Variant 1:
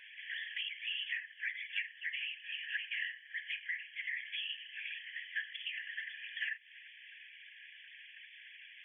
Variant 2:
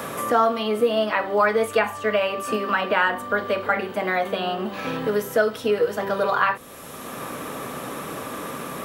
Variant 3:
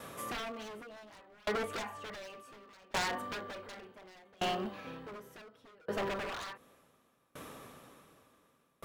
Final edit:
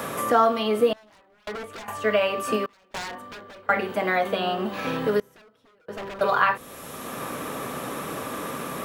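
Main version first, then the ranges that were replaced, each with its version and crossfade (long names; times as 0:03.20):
2
0:00.93–0:01.88: punch in from 3
0:02.66–0:03.69: punch in from 3
0:05.20–0:06.21: punch in from 3
not used: 1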